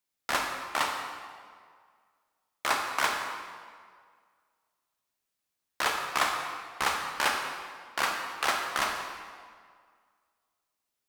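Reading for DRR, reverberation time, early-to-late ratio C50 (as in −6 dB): 2.0 dB, 1.9 s, 3.5 dB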